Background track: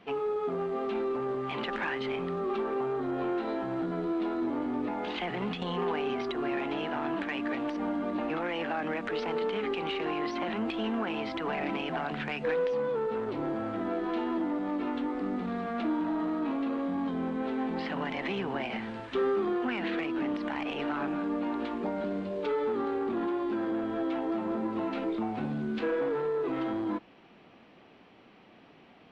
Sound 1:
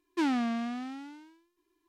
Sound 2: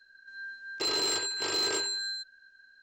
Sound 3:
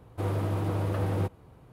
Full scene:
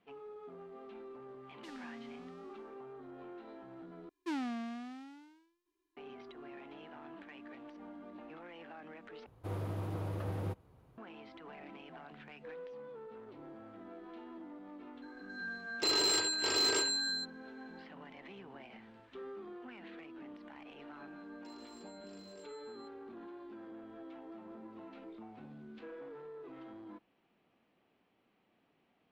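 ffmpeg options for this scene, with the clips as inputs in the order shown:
ffmpeg -i bed.wav -i cue0.wav -i cue1.wav -i cue2.wav -filter_complex "[1:a]asplit=2[link_01][link_02];[2:a]asplit=2[link_03][link_04];[0:a]volume=-18.5dB[link_05];[link_01]acrossover=split=200|3000[link_06][link_07][link_08];[link_07]acompressor=threshold=-38dB:ratio=6:attack=3.2:release=140:knee=2.83:detection=peak[link_09];[link_06][link_09][link_08]amix=inputs=3:normalize=0[link_10];[3:a]equalizer=frequency=8200:width_type=o:width=0.2:gain=-4[link_11];[link_04]acompressor=threshold=-42dB:ratio=6:attack=3.2:release=140:knee=1:detection=peak[link_12];[link_05]asplit=3[link_13][link_14][link_15];[link_13]atrim=end=4.094[link_16];[link_02]atrim=end=1.88,asetpts=PTS-STARTPTS,volume=-9dB[link_17];[link_14]atrim=start=5.966:end=9.264[link_18];[link_11]atrim=end=1.72,asetpts=PTS-STARTPTS,volume=-9.5dB[link_19];[link_15]atrim=start=10.976[link_20];[link_10]atrim=end=1.88,asetpts=PTS-STARTPTS,volume=-15dB,afade=type=in:duration=0.004:curve=hsin,afade=type=out:start_time=1.876:duration=0.004:curve=hsin,adelay=1460[link_21];[link_03]atrim=end=2.82,asetpts=PTS-STARTPTS,volume=-1dB,afade=type=in:duration=0.004:curve=hsin,afade=type=out:start_time=2.816:duration=0.004:curve=hsin,adelay=15020[link_22];[link_12]atrim=end=2.82,asetpts=PTS-STARTPTS,volume=-17dB,afade=type=in:duration=0.004:curve=hsin,afade=type=out:start_time=2.816:duration=0.004:curve=hsin,adelay=20650[link_23];[link_16][link_17]acrossfade=duration=0.004:curve1=hsin:curve2=hsin[link_24];[link_24][link_18]acrossfade=duration=0.004:curve1=hsin:curve2=hsin[link_25];[link_25][link_19]acrossfade=duration=0.004:curve1=hsin:curve2=hsin[link_26];[link_26][link_20]acrossfade=duration=0.004:curve1=hsin:curve2=hsin[link_27];[link_27][link_21][link_22][link_23]amix=inputs=4:normalize=0" out.wav

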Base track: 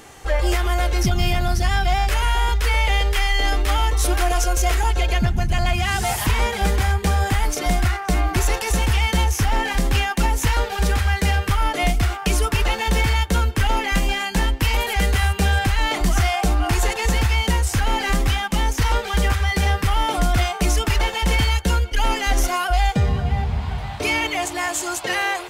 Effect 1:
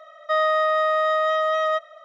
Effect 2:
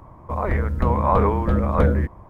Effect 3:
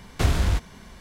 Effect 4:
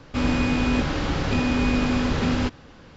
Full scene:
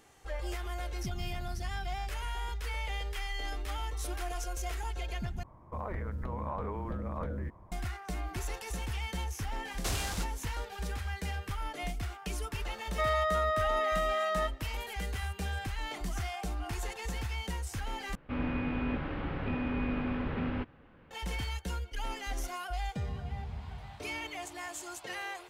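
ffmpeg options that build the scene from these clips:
ffmpeg -i bed.wav -i cue0.wav -i cue1.wav -i cue2.wav -i cue3.wav -filter_complex "[0:a]volume=-17.5dB[link_01];[2:a]acompressor=threshold=-21dB:ratio=6:attack=3.2:release=140:knee=1:detection=peak[link_02];[3:a]bass=frequency=250:gain=-9,treble=frequency=4000:gain=11[link_03];[4:a]lowpass=frequency=2700:width=0.5412,lowpass=frequency=2700:width=1.3066[link_04];[link_01]asplit=3[link_05][link_06][link_07];[link_05]atrim=end=5.434[link_08];[link_02]atrim=end=2.29,asetpts=PTS-STARTPTS,volume=-11dB[link_09];[link_06]atrim=start=7.716:end=18.154[link_10];[link_04]atrim=end=2.96,asetpts=PTS-STARTPTS,volume=-11dB[link_11];[link_07]atrim=start=21.106[link_12];[link_03]atrim=end=1,asetpts=PTS-STARTPTS,volume=-10dB,afade=type=in:duration=0.004:curve=hsin,afade=type=out:start_time=0.996:duration=0.004:curve=hsin,adelay=9650[link_13];[1:a]atrim=end=2.04,asetpts=PTS-STARTPTS,volume=-9.5dB,afade=type=in:duration=0.004:curve=hsin,afade=type=out:start_time=2.036:duration=0.004:curve=hsin,adelay=12690[link_14];[link_08][link_09]acrossfade=duration=0.004:curve1=hsin:curve2=hsin[link_15];[link_15][link_10]acrossfade=duration=0.004:curve1=hsin:curve2=hsin[link_16];[link_16][link_11]acrossfade=duration=0.004:curve1=hsin:curve2=hsin[link_17];[link_17][link_12]acrossfade=duration=0.004:curve1=hsin:curve2=hsin[link_18];[link_18][link_13][link_14]amix=inputs=3:normalize=0" out.wav

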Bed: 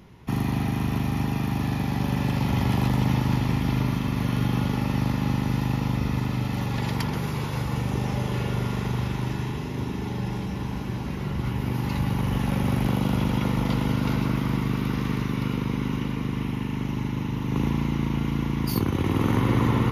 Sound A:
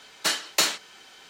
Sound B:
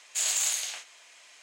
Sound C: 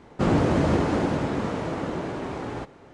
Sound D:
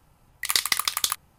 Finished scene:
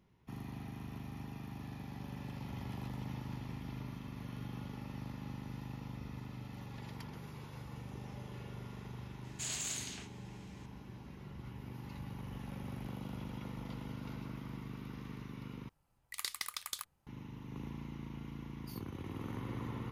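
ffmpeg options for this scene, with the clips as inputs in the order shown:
ffmpeg -i bed.wav -i cue0.wav -i cue1.wav -i cue2.wav -i cue3.wav -filter_complex "[0:a]volume=-20dB[link_01];[2:a]highshelf=frequency=7800:gain=-7[link_02];[link_01]asplit=2[link_03][link_04];[link_03]atrim=end=15.694[link_05];[4:a]atrim=end=1.38,asetpts=PTS-STARTPTS,volume=-17dB[link_06];[link_04]atrim=start=17.066[link_07];[link_02]atrim=end=1.42,asetpts=PTS-STARTPTS,volume=-9.5dB,afade=type=in:duration=0.004:curve=hsin,afade=type=out:start_time=1.416:duration=0.004:curve=hsin,adelay=9240[link_08];[link_05][link_06]acrossfade=duration=0.004:curve1=hsin:curve2=hsin[link_09];[link_09][link_07]acrossfade=duration=0.004:curve1=hsin:curve2=hsin[link_10];[link_10][link_08]amix=inputs=2:normalize=0" out.wav

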